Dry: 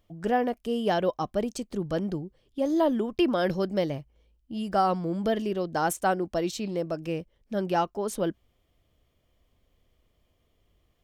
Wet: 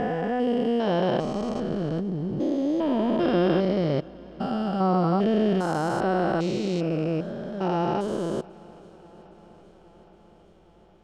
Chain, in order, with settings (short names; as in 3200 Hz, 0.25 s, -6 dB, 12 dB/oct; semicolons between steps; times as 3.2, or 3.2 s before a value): stepped spectrum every 0.4 s; air absorption 76 m; swung echo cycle 0.816 s, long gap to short 1.5:1, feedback 62%, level -24 dB; gain +8.5 dB